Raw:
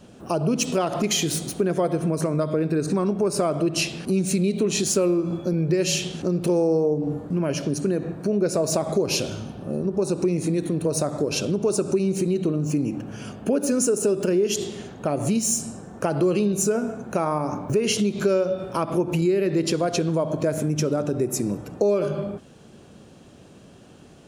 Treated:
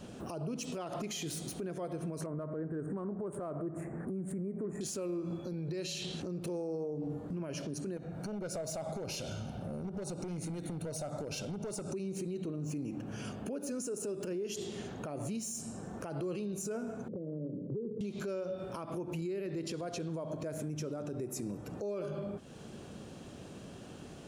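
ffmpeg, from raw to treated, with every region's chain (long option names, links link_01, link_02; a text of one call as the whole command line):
ffmpeg -i in.wav -filter_complex "[0:a]asettb=1/sr,asplit=3[link_01][link_02][link_03];[link_01]atrim=end=2.264[link_04];[link_02]atrim=start=2.26:end=4.81,asetpts=PTS-STARTPTS,afade=type=in:duration=0.004:curve=qsin,afade=type=out:start_time=2.546:duration=0.004:curve=qsin,asuperstop=centerf=4000:order=12:qfactor=0.68,adynamicsmooth=sensitivity=3.5:basefreq=4000[link_05];[link_03]atrim=start=4.806[link_06];[link_04][link_05]acrossfade=duration=0.004:curve1=hsin:curve2=qsin[link_07];[link_07][link_06]acrossfade=duration=0.004:curve1=qsin:curve2=hsin,asettb=1/sr,asplit=3[link_08][link_09][link_10];[link_08]atrim=end=5.454[link_11];[link_09]atrim=start=5.45:end=6.2,asetpts=PTS-STARTPTS,afade=type=in:duration=0.004:curve=qsin,afade=type=out:start_time=0.746:duration=0.004:curve=qsin,equalizer=frequency=4000:width_type=o:width=0.25:gain=10,acompressor=threshold=-24dB:ratio=6:attack=3.2:release=140:knee=1:detection=peak[link_12];[link_10]atrim=start=6.196[link_13];[link_11][link_12]acrossfade=duration=0.004:curve1=hsin:curve2=qsin[link_14];[link_14][link_13]acrossfade=duration=0.004:curve1=qsin:curve2=hsin,asettb=1/sr,asplit=3[link_15][link_16][link_17];[link_15]atrim=end=7.974[link_18];[link_16]atrim=start=7.97:end=11.91,asetpts=PTS-STARTPTS,afade=type=in:duration=0.004:curve=qsin,afade=type=out:start_time=3.936:duration=0.004:curve=qsin,acompressor=threshold=-31dB:ratio=2:attack=3.2:release=140:knee=1:detection=peak,aeval=exprs='clip(val(0),-1,0.0531)':channel_layout=same,aecho=1:1:1.4:0.47,atrim=end_sample=173754[link_19];[link_17]atrim=start=11.906[link_20];[link_18][link_19]acrossfade=duration=0.004:curve1=hsin:curve2=qsin[link_21];[link_21][link_20]acrossfade=duration=0.004:curve1=qsin:curve2=hsin,asettb=1/sr,asplit=3[link_22][link_23][link_24];[link_22]atrim=end=17.084[link_25];[link_23]atrim=start=17.08:end=18.01,asetpts=PTS-STARTPTS,afade=type=in:duration=0.004:curve=qsin,afade=type=out:start_time=0.926:duration=0.004:curve=qsin,asuperpass=centerf=250:order=20:qfactor=0.57,acompressor=threshold=-33dB:ratio=1.5:attack=3.2:release=140:knee=1:detection=peak[link_26];[link_24]atrim=start=18.006[link_27];[link_25][link_26]acrossfade=duration=0.004:curve1=hsin:curve2=qsin[link_28];[link_28][link_27]acrossfade=duration=0.004:curve1=qsin:curve2=hsin,acompressor=threshold=-40dB:ratio=2.5,alimiter=level_in=6.5dB:limit=-24dB:level=0:latency=1:release=19,volume=-6.5dB" out.wav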